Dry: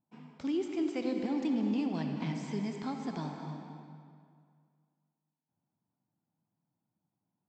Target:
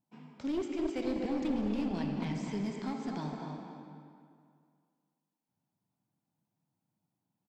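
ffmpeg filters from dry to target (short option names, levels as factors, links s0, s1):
-filter_complex "[0:a]bandreject=f=80.89:t=h:w=4,bandreject=f=161.78:t=h:w=4,bandreject=f=242.67:t=h:w=4,bandreject=f=323.56:t=h:w=4,bandreject=f=404.45:t=h:w=4,bandreject=f=485.34:t=h:w=4,bandreject=f=566.23:t=h:w=4,bandreject=f=647.12:t=h:w=4,bandreject=f=728.01:t=h:w=4,bandreject=f=808.9:t=h:w=4,bandreject=f=889.79:t=h:w=4,bandreject=f=970.68:t=h:w=4,bandreject=f=1051.57:t=h:w=4,bandreject=f=1132.46:t=h:w=4,bandreject=f=1213.35:t=h:w=4,bandreject=f=1294.24:t=h:w=4,bandreject=f=1375.13:t=h:w=4,bandreject=f=1456.02:t=h:w=4,bandreject=f=1536.91:t=h:w=4,bandreject=f=1617.8:t=h:w=4,bandreject=f=1698.69:t=h:w=4,bandreject=f=1779.58:t=h:w=4,bandreject=f=1860.47:t=h:w=4,bandreject=f=1941.36:t=h:w=4,bandreject=f=2022.25:t=h:w=4,bandreject=f=2103.14:t=h:w=4,bandreject=f=2184.03:t=h:w=4,bandreject=f=2264.92:t=h:w=4,aeval=exprs='clip(val(0),-1,0.0251)':c=same,asplit=2[s0][s1];[s1]adelay=249,lowpass=f=1700:p=1,volume=0.473,asplit=2[s2][s3];[s3]adelay=249,lowpass=f=1700:p=1,volume=0.28,asplit=2[s4][s5];[s5]adelay=249,lowpass=f=1700:p=1,volume=0.28,asplit=2[s6][s7];[s7]adelay=249,lowpass=f=1700:p=1,volume=0.28[s8];[s0][s2][s4][s6][s8]amix=inputs=5:normalize=0"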